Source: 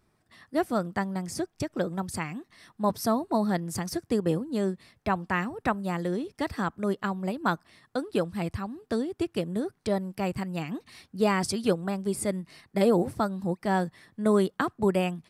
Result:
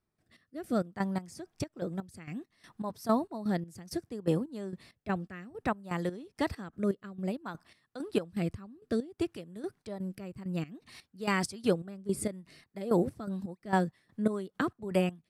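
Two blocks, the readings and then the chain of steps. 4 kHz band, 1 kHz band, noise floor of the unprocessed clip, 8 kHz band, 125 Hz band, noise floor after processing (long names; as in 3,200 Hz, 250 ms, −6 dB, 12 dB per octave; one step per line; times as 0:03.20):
−6.0 dB, −7.0 dB, −72 dBFS, −7.0 dB, −4.0 dB, −82 dBFS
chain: rotating-speaker cabinet horn 0.6 Hz, later 5 Hz, at 0:12.00
gate pattern "..xx...xx" 165 BPM −12 dB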